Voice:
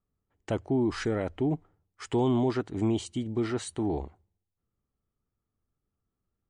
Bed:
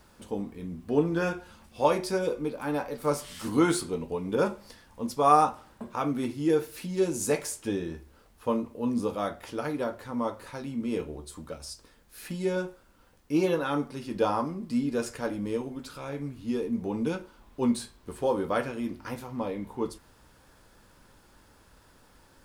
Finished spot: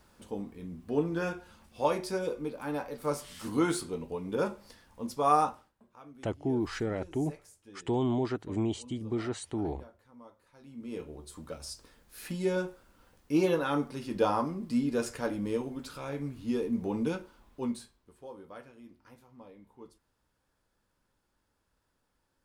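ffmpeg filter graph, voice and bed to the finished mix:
-filter_complex "[0:a]adelay=5750,volume=-3.5dB[a];[1:a]volume=17dB,afade=t=out:st=5.49:d=0.23:silence=0.125893,afade=t=in:st=10.53:d=1.14:silence=0.0841395,afade=t=out:st=16.96:d=1.14:silence=0.11885[b];[a][b]amix=inputs=2:normalize=0"

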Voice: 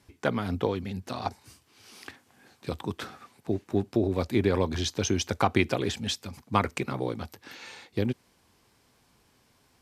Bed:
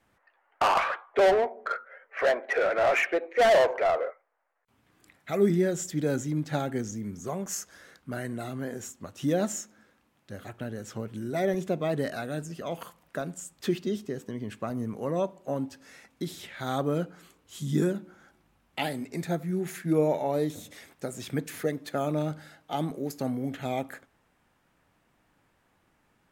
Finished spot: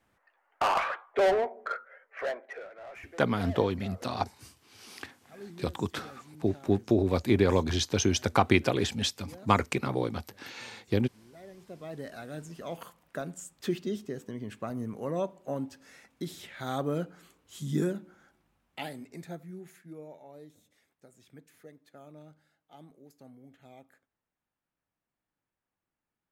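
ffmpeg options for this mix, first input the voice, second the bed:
-filter_complex "[0:a]adelay=2950,volume=1dB[a];[1:a]volume=16.5dB,afade=t=out:st=1.78:d=0.91:silence=0.105925,afade=t=in:st=11.58:d=1.3:silence=0.105925,afade=t=out:st=17.79:d=2.18:silence=0.112202[b];[a][b]amix=inputs=2:normalize=0"

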